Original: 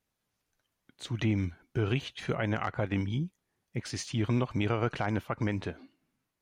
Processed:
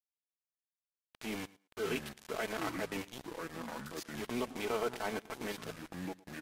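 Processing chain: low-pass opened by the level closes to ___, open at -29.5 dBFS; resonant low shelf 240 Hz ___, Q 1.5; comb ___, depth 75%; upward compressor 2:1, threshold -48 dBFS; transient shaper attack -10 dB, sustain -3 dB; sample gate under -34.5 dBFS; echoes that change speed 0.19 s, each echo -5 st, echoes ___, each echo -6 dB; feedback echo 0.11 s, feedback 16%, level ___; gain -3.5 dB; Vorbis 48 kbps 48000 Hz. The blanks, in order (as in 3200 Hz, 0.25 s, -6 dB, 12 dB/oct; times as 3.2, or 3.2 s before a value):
620 Hz, -11 dB, 4.6 ms, 2, -21 dB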